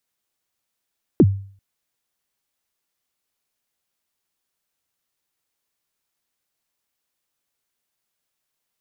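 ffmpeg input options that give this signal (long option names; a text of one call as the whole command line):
ffmpeg -f lavfi -i "aevalsrc='0.531*pow(10,-3*t/0.48)*sin(2*PI*(410*0.048/log(98/410)*(exp(log(98/410)*min(t,0.048)/0.048)-1)+98*max(t-0.048,0)))':duration=0.39:sample_rate=44100" out.wav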